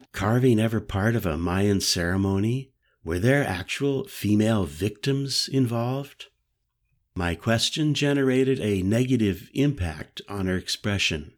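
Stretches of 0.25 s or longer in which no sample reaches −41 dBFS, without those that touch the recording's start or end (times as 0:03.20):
0:02.64–0:03.05
0:06.25–0:07.16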